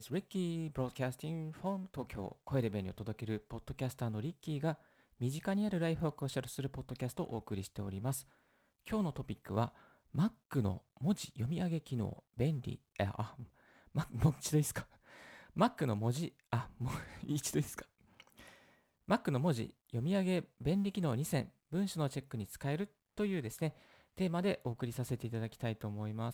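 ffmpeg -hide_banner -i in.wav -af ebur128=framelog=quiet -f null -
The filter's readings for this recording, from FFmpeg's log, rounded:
Integrated loudness:
  I:         -38.2 LUFS
  Threshold: -48.6 LUFS
Loudness range:
  LRA:         3.9 LU
  Threshold: -58.6 LUFS
  LRA low:   -40.6 LUFS
  LRA high:  -36.7 LUFS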